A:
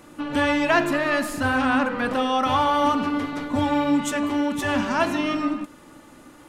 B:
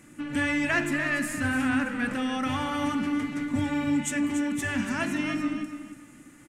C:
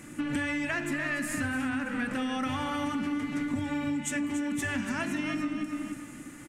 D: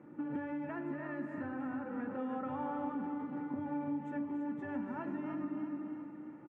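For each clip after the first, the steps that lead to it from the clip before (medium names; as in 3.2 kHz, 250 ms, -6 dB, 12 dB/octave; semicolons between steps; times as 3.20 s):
graphic EQ 125/250/500/1000/2000/4000/8000 Hz +7/+5/-5/-7/+9/-6/+10 dB; feedback delay 287 ms, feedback 24%, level -10 dB; trim -7.5 dB
compression 10:1, threshold -34 dBFS, peak gain reduction 13.5 dB; trim +6 dB
Chebyshev band-pass 180–900 Hz, order 2; comb 2.2 ms, depth 41%; feedback delay 333 ms, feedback 51%, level -9 dB; trim -4.5 dB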